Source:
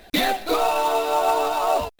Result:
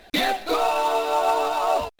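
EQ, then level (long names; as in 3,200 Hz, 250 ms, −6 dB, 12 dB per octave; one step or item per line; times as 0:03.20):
low-shelf EQ 370 Hz −4 dB
high-shelf EQ 10,000 Hz −9 dB
0.0 dB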